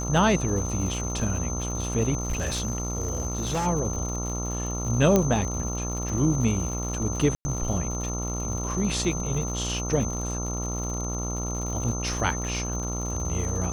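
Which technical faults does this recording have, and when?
buzz 60 Hz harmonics 23 -31 dBFS
crackle 140/s -33 dBFS
tone 6200 Hz -33 dBFS
2.2–3.67 clipped -23 dBFS
5.16 pop -7 dBFS
7.35–7.45 gap 0.1 s

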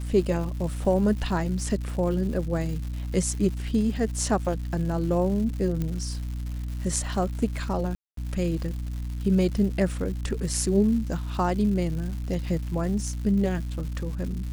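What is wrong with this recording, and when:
crackle 280/s -35 dBFS
hum 60 Hz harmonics 5 -31 dBFS
5.82 pop -17 dBFS
7.95–8.17 gap 0.223 s

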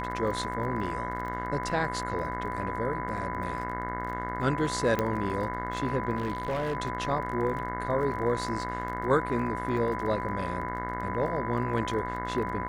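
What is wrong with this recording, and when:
buzz 60 Hz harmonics 36 -36 dBFS
crackle 26/s -36 dBFS
tone 1000 Hz -34 dBFS
4.99 pop -14 dBFS
6.16–6.75 clipped -26 dBFS

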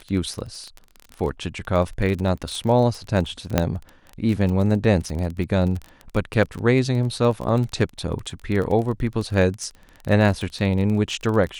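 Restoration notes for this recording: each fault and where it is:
crackle 23/s -26 dBFS
3.58 pop -3 dBFS

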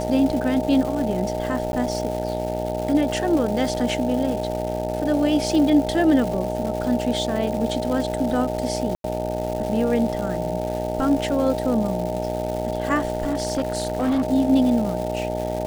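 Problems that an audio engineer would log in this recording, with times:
buzz 60 Hz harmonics 15 -28 dBFS
crackle 460/s -29 dBFS
tone 620 Hz -27 dBFS
1.72–1.73 gap 11 ms
8.95–9.04 gap 92 ms
13.15–14.25 clipped -17.5 dBFS

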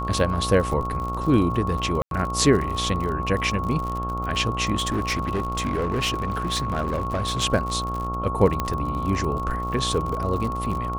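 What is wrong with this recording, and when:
buzz 60 Hz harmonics 23 -30 dBFS
crackle 48/s -28 dBFS
tone 1100 Hz -28 dBFS
2.02–2.11 gap 92 ms
4.75–7.44 clipped -20 dBFS
8.6 pop -10 dBFS

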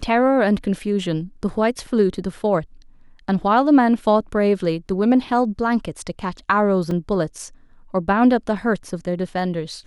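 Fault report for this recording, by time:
6.91 gap 3.2 ms

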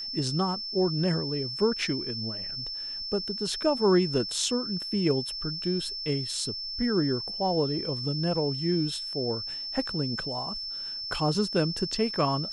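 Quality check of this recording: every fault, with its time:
tone 5300 Hz -33 dBFS

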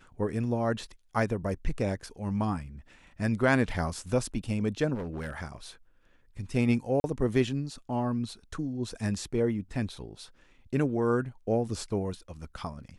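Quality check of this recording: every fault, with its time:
4.94–5.33 clipped -31.5 dBFS
7–7.04 gap 41 ms

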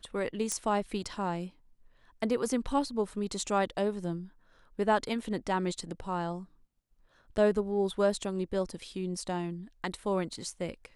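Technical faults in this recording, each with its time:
0.52 pop -17 dBFS

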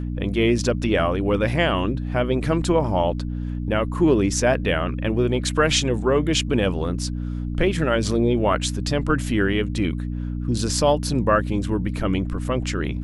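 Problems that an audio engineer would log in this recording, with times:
hum 60 Hz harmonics 5 -27 dBFS

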